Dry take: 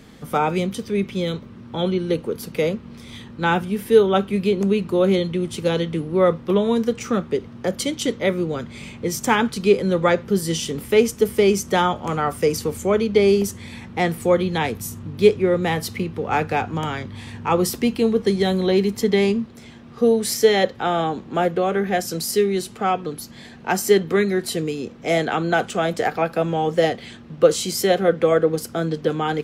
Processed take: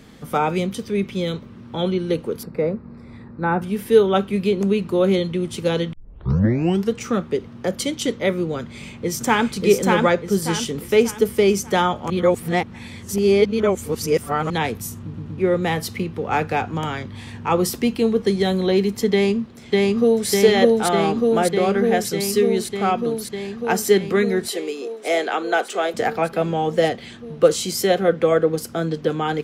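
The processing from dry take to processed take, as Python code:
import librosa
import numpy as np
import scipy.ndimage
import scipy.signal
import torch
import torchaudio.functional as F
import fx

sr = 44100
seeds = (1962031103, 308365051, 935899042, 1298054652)

y = fx.moving_average(x, sr, points=14, at=(2.43, 3.62))
y = fx.echo_throw(y, sr, start_s=8.61, length_s=0.87, ms=590, feedback_pct=40, wet_db=-2.0)
y = fx.echo_throw(y, sr, start_s=19.12, length_s=1.16, ms=600, feedback_pct=80, wet_db=0.0)
y = fx.highpass(y, sr, hz=330.0, slope=24, at=(24.48, 25.94))
y = fx.edit(y, sr, fx.tape_start(start_s=5.93, length_s=1.0),
    fx.reverse_span(start_s=12.1, length_s=2.4),
    fx.stutter_over(start_s=15.02, slice_s=0.12, count=3), tone=tone)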